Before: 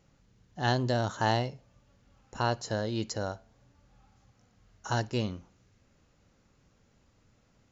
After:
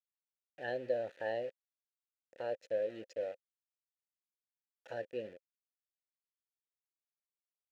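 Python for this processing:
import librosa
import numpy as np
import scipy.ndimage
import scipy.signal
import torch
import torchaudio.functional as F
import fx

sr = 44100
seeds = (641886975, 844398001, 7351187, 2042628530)

y = fx.envelope_sharpen(x, sr, power=1.5)
y = np.where(np.abs(y) >= 10.0 ** (-37.0 / 20.0), y, 0.0)
y = fx.vowel_filter(y, sr, vowel='e')
y = y * 10.0 ** (2.5 / 20.0)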